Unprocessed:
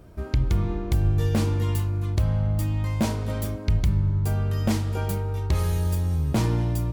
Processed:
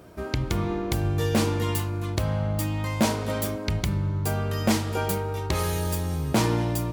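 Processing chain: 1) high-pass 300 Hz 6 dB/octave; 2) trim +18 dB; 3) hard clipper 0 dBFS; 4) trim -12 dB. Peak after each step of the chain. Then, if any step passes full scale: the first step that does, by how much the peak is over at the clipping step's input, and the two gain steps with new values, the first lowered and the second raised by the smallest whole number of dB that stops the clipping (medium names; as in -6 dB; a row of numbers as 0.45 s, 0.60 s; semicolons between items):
-14.0 dBFS, +4.0 dBFS, 0.0 dBFS, -12.0 dBFS; step 2, 4.0 dB; step 2 +14 dB, step 4 -8 dB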